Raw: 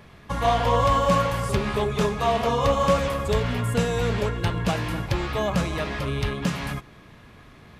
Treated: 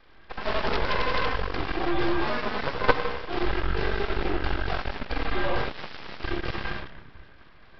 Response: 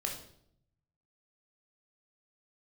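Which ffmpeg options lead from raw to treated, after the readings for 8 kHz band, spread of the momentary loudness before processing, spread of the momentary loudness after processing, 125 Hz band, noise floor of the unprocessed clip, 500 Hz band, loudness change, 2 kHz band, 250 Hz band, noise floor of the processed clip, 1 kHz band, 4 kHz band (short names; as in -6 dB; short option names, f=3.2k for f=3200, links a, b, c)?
under -20 dB, 7 LU, 9 LU, -10.0 dB, -49 dBFS, -6.0 dB, -5.0 dB, +1.5 dB, -5.0 dB, -51 dBFS, -5.5 dB, -2.5 dB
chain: -filter_complex "[0:a]afreqshift=-70,equalizer=f=100:t=o:w=0.67:g=-11,equalizer=f=630:t=o:w=0.67:g=3,equalizer=f=1.6k:t=o:w=0.67:g=5[a];[1:a]atrim=start_sample=2205,asetrate=27342,aresample=44100[b];[a][b]afir=irnorm=-1:irlink=0,aeval=exprs='0.944*(cos(1*acos(clip(val(0)/0.944,-1,1)))-cos(1*PI/2))+0.473*(cos(3*acos(clip(val(0)/0.944,-1,1)))-cos(3*PI/2))+0.0335*(cos(4*acos(clip(val(0)/0.944,-1,1)))-cos(4*PI/2))+0.0668*(cos(8*acos(clip(val(0)/0.944,-1,1)))-cos(8*PI/2))':c=same,aresample=11025,aeval=exprs='abs(val(0))':c=same,aresample=44100,volume=-4.5dB"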